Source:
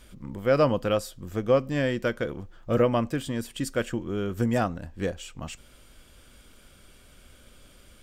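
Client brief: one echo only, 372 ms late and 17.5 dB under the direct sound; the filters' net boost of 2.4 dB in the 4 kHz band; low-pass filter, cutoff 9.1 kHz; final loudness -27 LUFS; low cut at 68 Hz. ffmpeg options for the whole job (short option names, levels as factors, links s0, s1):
-af "highpass=68,lowpass=9100,equalizer=f=4000:t=o:g=3.5,aecho=1:1:372:0.133"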